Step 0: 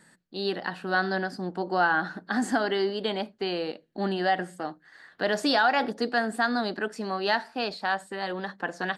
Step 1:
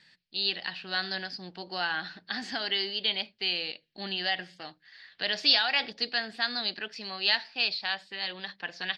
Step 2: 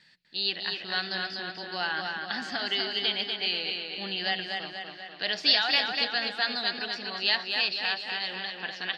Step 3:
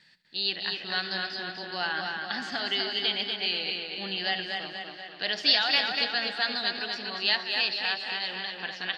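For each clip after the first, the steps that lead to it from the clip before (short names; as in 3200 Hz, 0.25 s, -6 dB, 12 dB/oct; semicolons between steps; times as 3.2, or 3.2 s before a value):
EQ curve 120 Hz 0 dB, 250 Hz -9 dB, 600 Hz -6 dB, 1400 Hz -4 dB, 2400 Hz +13 dB, 5000 Hz +13 dB, 8200 Hz -14 dB; gain -5.5 dB
tape echo 0.245 s, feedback 62%, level -3.5 dB, low-pass 5300 Hz
regenerating reverse delay 0.114 s, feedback 64%, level -14 dB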